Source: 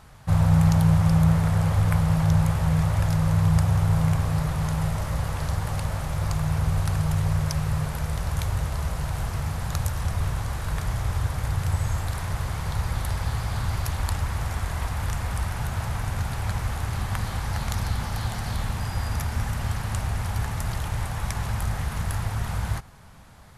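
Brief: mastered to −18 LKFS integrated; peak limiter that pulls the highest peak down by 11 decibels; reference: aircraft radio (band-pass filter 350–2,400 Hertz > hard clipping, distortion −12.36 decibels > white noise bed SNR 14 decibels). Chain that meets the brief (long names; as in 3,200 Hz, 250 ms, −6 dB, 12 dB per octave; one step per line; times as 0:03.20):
brickwall limiter −18.5 dBFS
band-pass filter 350–2,400 Hz
hard clipping −36 dBFS
white noise bed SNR 14 dB
level +21.5 dB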